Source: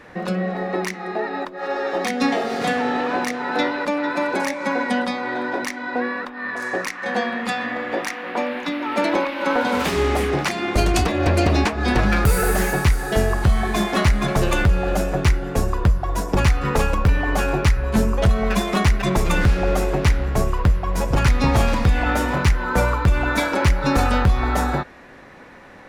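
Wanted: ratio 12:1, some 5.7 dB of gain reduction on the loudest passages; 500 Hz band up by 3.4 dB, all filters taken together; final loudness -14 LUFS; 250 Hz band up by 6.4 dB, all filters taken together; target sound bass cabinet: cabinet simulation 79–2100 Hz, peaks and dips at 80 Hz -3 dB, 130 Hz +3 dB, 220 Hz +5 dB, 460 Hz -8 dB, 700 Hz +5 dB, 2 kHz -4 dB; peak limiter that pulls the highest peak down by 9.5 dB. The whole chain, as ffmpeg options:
-af "equalizer=f=250:t=o:g=4,equalizer=f=500:t=o:g=5,acompressor=threshold=0.158:ratio=12,alimiter=limit=0.15:level=0:latency=1,highpass=f=79:w=0.5412,highpass=f=79:w=1.3066,equalizer=f=80:t=q:w=4:g=-3,equalizer=f=130:t=q:w=4:g=3,equalizer=f=220:t=q:w=4:g=5,equalizer=f=460:t=q:w=4:g=-8,equalizer=f=700:t=q:w=4:g=5,equalizer=f=2000:t=q:w=4:g=-4,lowpass=f=2100:w=0.5412,lowpass=f=2100:w=1.3066,volume=3.76"

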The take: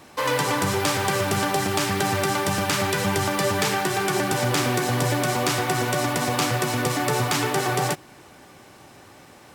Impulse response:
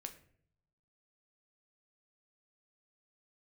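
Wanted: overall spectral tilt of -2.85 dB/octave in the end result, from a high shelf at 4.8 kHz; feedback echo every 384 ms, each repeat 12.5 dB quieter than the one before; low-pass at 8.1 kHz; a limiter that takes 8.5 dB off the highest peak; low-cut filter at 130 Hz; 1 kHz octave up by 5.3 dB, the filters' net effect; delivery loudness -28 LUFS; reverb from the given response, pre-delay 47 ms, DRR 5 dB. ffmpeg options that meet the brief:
-filter_complex "[0:a]highpass=130,lowpass=8100,equalizer=f=1000:t=o:g=6.5,highshelf=f=4800:g=9,alimiter=limit=0.237:level=0:latency=1,aecho=1:1:384|768|1152:0.237|0.0569|0.0137,asplit=2[s0][s1];[1:a]atrim=start_sample=2205,adelay=47[s2];[s1][s2]afir=irnorm=-1:irlink=0,volume=0.891[s3];[s0][s3]amix=inputs=2:normalize=0,volume=0.422"

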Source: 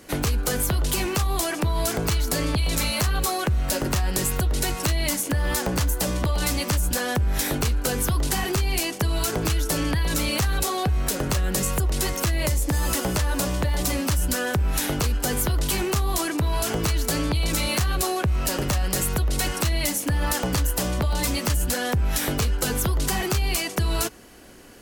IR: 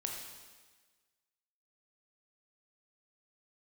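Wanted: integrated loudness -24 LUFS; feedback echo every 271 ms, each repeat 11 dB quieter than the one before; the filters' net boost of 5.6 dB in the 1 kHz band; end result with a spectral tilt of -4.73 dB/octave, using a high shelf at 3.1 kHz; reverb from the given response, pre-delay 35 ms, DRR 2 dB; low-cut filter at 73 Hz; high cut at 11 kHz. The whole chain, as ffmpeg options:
-filter_complex "[0:a]highpass=73,lowpass=11000,equalizer=f=1000:t=o:g=8,highshelf=f=3100:g=-7,aecho=1:1:271|542|813:0.282|0.0789|0.0221,asplit=2[s0][s1];[1:a]atrim=start_sample=2205,adelay=35[s2];[s1][s2]afir=irnorm=-1:irlink=0,volume=0.75[s3];[s0][s3]amix=inputs=2:normalize=0,volume=0.891"

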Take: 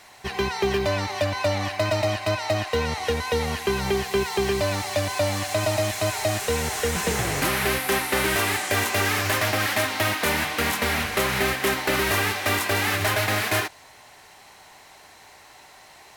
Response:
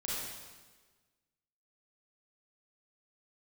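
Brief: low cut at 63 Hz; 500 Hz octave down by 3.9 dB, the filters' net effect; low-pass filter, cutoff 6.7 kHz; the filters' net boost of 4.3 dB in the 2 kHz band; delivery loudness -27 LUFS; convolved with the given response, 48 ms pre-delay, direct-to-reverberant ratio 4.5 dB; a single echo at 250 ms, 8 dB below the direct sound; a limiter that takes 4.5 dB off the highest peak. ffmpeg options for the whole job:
-filter_complex "[0:a]highpass=63,lowpass=6700,equalizer=f=500:t=o:g=-5.5,equalizer=f=2000:t=o:g=5.5,alimiter=limit=0.2:level=0:latency=1,aecho=1:1:250:0.398,asplit=2[s0][s1];[1:a]atrim=start_sample=2205,adelay=48[s2];[s1][s2]afir=irnorm=-1:irlink=0,volume=0.398[s3];[s0][s3]amix=inputs=2:normalize=0,volume=0.531"

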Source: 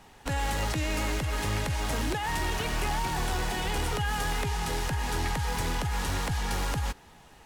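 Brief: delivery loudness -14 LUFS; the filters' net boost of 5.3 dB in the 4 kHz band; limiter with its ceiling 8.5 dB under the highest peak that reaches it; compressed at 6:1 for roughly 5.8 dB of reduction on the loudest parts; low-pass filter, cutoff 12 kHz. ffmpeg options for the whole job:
-af "lowpass=12000,equalizer=f=4000:t=o:g=7,acompressor=threshold=0.0282:ratio=6,volume=17.8,alimiter=limit=0.531:level=0:latency=1"

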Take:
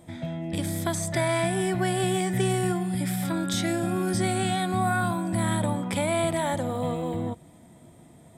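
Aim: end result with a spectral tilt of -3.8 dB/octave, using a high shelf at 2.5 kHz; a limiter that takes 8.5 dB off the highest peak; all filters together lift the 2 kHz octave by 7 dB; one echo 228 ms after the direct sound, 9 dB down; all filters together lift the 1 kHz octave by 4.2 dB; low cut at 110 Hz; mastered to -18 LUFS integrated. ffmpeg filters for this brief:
-af "highpass=110,equalizer=f=1000:t=o:g=4,equalizer=f=2000:t=o:g=4.5,highshelf=f=2500:g=7,alimiter=limit=0.126:level=0:latency=1,aecho=1:1:228:0.355,volume=2.66"

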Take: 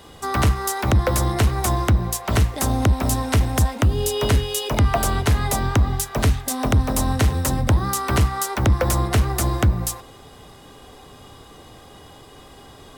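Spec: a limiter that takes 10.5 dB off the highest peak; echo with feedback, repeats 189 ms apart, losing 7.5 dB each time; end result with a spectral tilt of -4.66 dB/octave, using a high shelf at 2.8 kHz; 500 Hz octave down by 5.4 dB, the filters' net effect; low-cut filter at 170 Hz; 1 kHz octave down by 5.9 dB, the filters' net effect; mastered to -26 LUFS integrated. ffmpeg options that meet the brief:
-af "highpass=170,equalizer=f=500:t=o:g=-5.5,equalizer=f=1000:t=o:g=-5,highshelf=f=2800:g=-6.5,alimiter=limit=0.0708:level=0:latency=1,aecho=1:1:189|378|567|756|945:0.422|0.177|0.0744|0.0312|0.0131,volume=1.88"

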